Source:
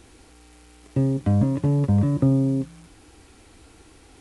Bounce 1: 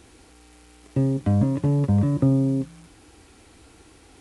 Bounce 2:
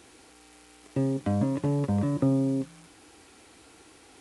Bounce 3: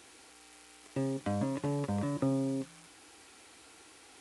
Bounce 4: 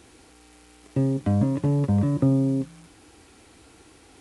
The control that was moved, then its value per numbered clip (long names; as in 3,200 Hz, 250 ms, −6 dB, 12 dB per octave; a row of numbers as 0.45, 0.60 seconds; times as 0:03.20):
high-pass filter, corner frequency: 42, 310, 860, 110 Hertz